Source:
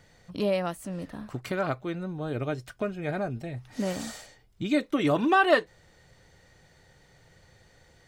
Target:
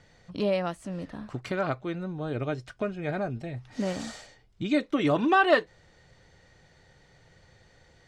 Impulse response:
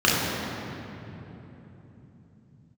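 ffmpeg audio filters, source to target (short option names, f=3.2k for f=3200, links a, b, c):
-af "lowpass=6.8k"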